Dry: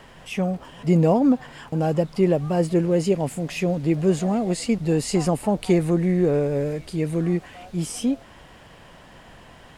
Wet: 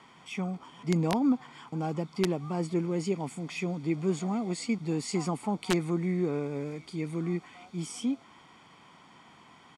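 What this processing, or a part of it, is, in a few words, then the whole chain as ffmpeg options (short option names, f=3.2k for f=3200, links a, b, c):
overflowing digital effects unit: -af "highpass=210,lowpass=10k,aecho=1:1:0.9:0.66,aeval=exprs='(mod(2.99*val(0)+1,2)-1)/2.99':c=same,lowpass=9.4k,volume=-7.5dB"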